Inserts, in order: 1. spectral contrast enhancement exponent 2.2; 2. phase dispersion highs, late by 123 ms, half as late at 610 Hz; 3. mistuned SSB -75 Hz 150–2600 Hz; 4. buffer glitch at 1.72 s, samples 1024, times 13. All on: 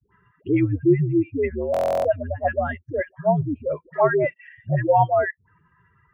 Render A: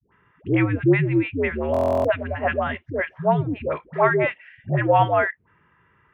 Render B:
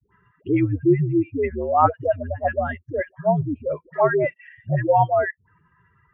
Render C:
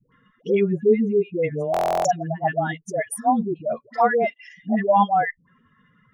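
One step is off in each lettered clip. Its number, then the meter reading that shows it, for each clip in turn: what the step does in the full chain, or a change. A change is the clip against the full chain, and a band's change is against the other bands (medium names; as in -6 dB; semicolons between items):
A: 1, 2 kHz band +5.0 dB; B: 4, crest factor change +4.5 dB; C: 3, 125 Hz band -7.0 dB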